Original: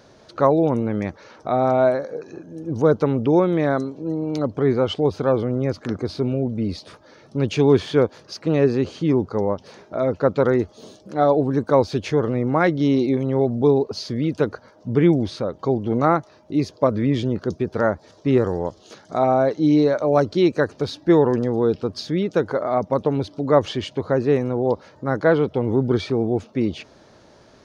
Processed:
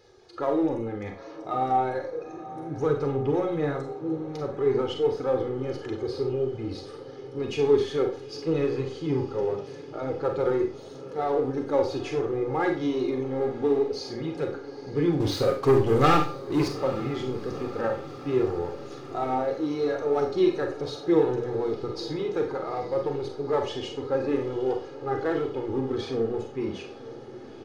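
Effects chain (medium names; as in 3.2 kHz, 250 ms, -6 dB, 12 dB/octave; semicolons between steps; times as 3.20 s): coarse spectral quantiser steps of 15 dB; hum notches 60/120/180/240/300 Hz; comb 2.4 ms, depth 61%; 15.20–16.68 s: waveshaping leveller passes 3; in parallel at -8 dB: hard clipper -19.5 dBFS, distortion -6 dB; on the sum: flange 0.16 Hz, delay 2.3 ms, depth 5.2 ms, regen +40%; echo that smears into a reverb 867 ms, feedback 70%, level -16 dB; Schroeder reverb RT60 0.37 s, combs from 31 ms, DRR 3.5 dB; trim -7.5 dB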